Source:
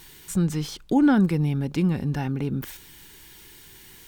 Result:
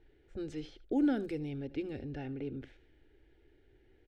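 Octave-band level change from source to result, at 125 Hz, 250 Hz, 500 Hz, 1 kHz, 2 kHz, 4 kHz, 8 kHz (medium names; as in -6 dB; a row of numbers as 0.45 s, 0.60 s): -20.0 dB, -12.5 dB, -7.5 dB, -16.0 dB, -14.0 dB, -15.5 dB, under -25 dB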